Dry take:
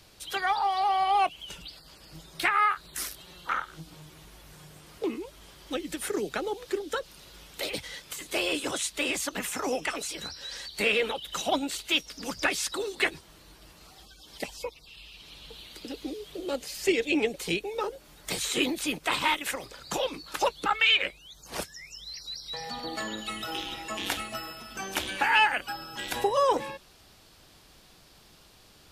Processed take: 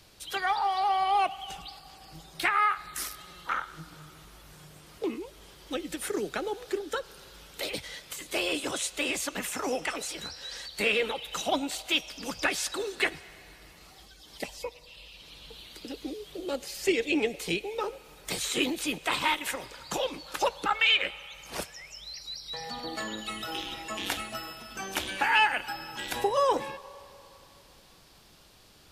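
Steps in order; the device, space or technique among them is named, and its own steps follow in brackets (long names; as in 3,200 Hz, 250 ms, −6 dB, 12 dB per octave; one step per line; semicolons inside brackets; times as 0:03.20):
filtered reverb send (on a send: high-pass filter 480 Hz 24 dB per octave + low-pass filter 8,100 Hz + convolution reverb RT60 3.1 s, pre-delay 23 ms, DRR 17 dB)
on the sum: level −1 dB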